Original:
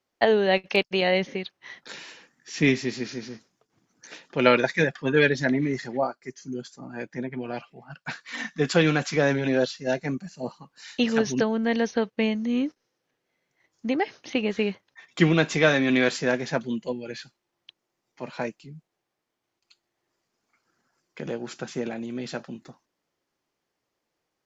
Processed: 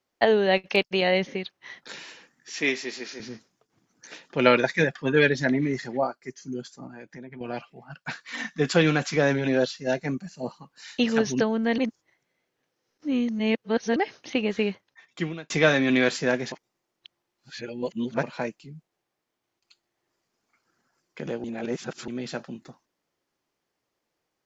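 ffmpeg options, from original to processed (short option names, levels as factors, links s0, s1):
-filter_complex "[0:a]asettb=1/sr,asplit=3[s0][s1][s2];[s0]atrim=end=2.544[s3];[s1]atrim=start=2.54:end=3.2,asetpts=PTS-STARTPTS,afade=t=in:d=0.004:c=qsin,afade=t=out:st=0.656:d=0.004:c=qsin,highpass=450[s4];[s2]atrim=start=3.196[s5];[s3][s4]acrossfade=d=0.004:c1=hsin:c2=qsin[s6];[s6][s5]acrossfade=d=0.004:c1=qsin:c2=hsin,asettb=1/sr,asplit=3[s7][s8][s9];[s7]atrim=end=6.874[s10];[s8]atrim=start=6.87:end=7.41,asetpts=PTS-STARTPTS,afade=t=in:d=0.004:c=qsin,afade=t=out:st=0.536:d=0.004:c=qsin,acompressor=threshold=0.00891:ratio=3:attack=3.2:release=140:knee=1:detection=peak[s11];[s9]atrim=start=7.406[s12];[s10][s11]acrossfade=d=0.004:c1=hsin:c2=qsin[s13];[s13][s12]acrossfade=d=0.004:c1=qsin:c2=hsin,asplit=8[s14][s15][s16][s17][s18][s19][s20][s21];[s14]atrim=end=11.782[s22];[s15]atrim=start=11.778:end=13.962,asetpts=PTS-STARTPTS,areverse[s23];[s16]atrim=start=13.958:end=15.5,asetpts=PTS-STARTPTS,afade=t=out:st=0.722:d=0.82[s24];[s17]atrim=start=15.5:end=16.522,asetpts=PTS-STARTPTS,afade=t=in:d=0.004:c=hsin[s25];[s18]atrim=start=16.518:end=18.232,asetpts=PTS-STARTPTS,areverse[s26];[s19]atrim=start=18.228:end=21.442[s27];[s20]atrim=start=21.438:end=22.082,asetpts=PTS-STARTPTS,areverse[s28];[s21]atrim=start=22.078[s29];[s22][s23]acrossfade=d=0.004:c1=hsin:c2=hsin[s30];[s24][s25]concat=n=2:v=0:a=1[s31];[s30][s31]acrossfade=d=0.004:c1=hsin:c2=hsin[s32];[s32][s26]acrossfade=d=0.004:c1=hsin:c2=hsin[s33];[s33][s27]acrossfade=d=0.004:c1=hsin:c2=hsin[s34];[s34][s28]acrossfade=d=0.004:c1=hsin:c2=hsin[s35];[s35][s29]acrossfade=d=0.004:c1=hsin:c2=hsin"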